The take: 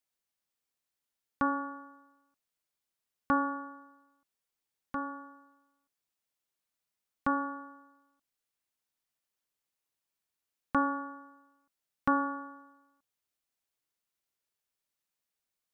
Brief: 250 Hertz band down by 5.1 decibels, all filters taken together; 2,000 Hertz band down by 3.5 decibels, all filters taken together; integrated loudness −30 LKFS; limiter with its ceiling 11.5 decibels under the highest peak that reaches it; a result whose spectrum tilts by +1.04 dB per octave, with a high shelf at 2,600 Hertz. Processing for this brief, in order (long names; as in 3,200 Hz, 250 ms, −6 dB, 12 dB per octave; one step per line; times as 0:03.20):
parametric band 250 Hz −5.5 dB
parametric band 2,000 Hz −8 dB
high-shelf EQ 2,600 Hz +4 dB
level +11 dB
brickwall limiter −17.5 dBFS